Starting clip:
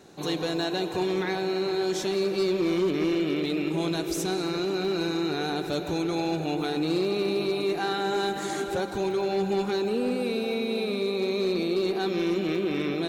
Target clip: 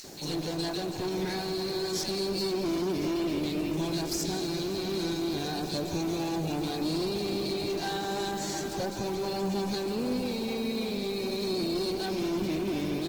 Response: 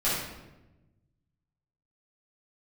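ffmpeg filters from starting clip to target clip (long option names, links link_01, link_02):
-filter_complex "[0:a]superequalizer=7b=0.708:10b=0.355:14b=3.16:15b=2:16b=0.398,acrossover=split=2000[link_01][link_02];[link_01]adelay=40[link_03];[link_03][link_02]amix=inputs=2:normalize=0,acompressor=mode=upward:threshold=-33dB:ratio=2.5,aeval=exprs='(tanh(22.4*val(0)+0.5)-tanh(0.5))/22.4':channel_layout=same,acrusher=bits=7:mix=0:aa=0.000001,adynamicequalizer=threshold=0.00355:dfrequency=130:dqfactor=0.81:tfrequency=130:tqfactor=0.81:attack=5:release=100:ratio=0.375:range=2.5:mode=boostabove:tftype=bell,asplit=2[link_04][link_05];[link_05]adelay=696,lowpass=frequency=880:poles=1,volume=-17.5dB,asplit=2[link_06][link_07];[link_07]adelay=696,lowpass=frequency=880:poles=1,volume=0.38,asplit=2[link_08][link_09];[link_09]adelay=696,lowpass=frequency=880:poles=1,volume=0.38[link_10];[link_06][link_08][link_10]amix=inputs=3:normalize=0[link_11];[link_04][link_11]amix=inputs=2:normalize=0" -ar 48000 -c:a libopus -b:a 16k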